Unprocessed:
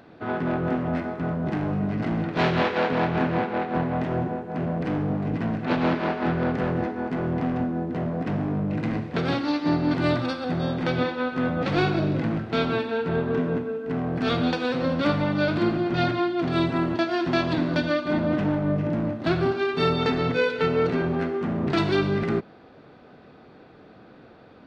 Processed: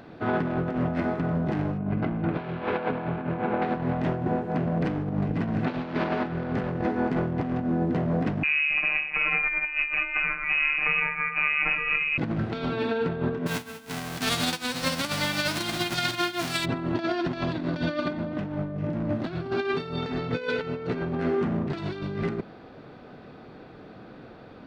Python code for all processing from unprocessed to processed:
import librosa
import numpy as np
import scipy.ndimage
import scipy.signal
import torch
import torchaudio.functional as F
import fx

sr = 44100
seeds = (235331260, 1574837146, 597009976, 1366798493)

y = fx.chain(x, sr, fx.lowpass(hz=2400.0, slope=12),
    fx.notch(hz=1900.0, q=11.0), at=(1.78, 3.62))
y = fx.chain(y, sr, fx.robotise(hz=149.0),
    fx.freq_invert(carrier_hz=2700), at=(8.43, 12.18))
y = fx.envelope_flatten(y, sr, power=0.3, at=(13.46, 16.64), fade=0.02)
y = fx.upward_expand(y, sr, threshold_db=-32.0, expansion=2.5, at=(13.46, 16.64), fade=0.02)
y = fx.low_shelf(y, sr, hz=100.0, db=8.0)
y = fx.over_compress(y, sr, threshold_db=-26.0, ratio=-0.5)
y = fx.peak_eq(y, sr, hz=70.0, db=-6.0, octaves=0.67)